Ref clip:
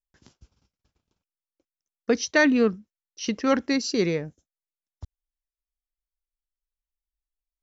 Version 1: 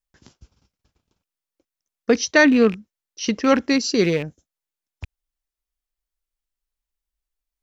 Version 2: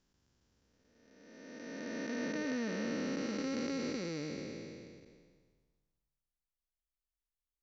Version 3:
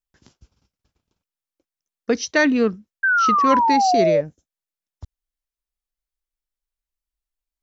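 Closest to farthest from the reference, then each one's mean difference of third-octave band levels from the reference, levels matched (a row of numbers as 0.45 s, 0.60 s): 1, 3, 2; 1.0 dB, 3.5 dB, 11.5 dB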